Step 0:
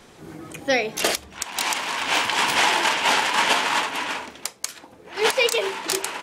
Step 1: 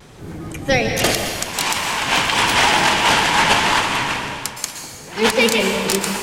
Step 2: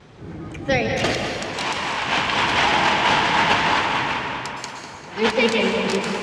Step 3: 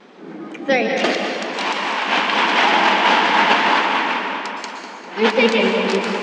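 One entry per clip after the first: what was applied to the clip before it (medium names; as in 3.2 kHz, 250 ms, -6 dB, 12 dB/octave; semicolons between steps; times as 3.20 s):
octave divider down 1 oct, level +4 dB; vibrato 1.4 Hz 51 cents; reverberation RT60 1.7 s, pre-delay 108 ms, DRR 4.5 dB; trim +3.5 dB
high-pass 53 Hz; distance through air 120 m; tape echo 199 ms, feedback 71%, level -7.5 dB, low-pass 3.8 kHz; trim -2.5 dB
brick-wall FIR high-pass 180 Hz; distance through air 85 m; trim +4 dB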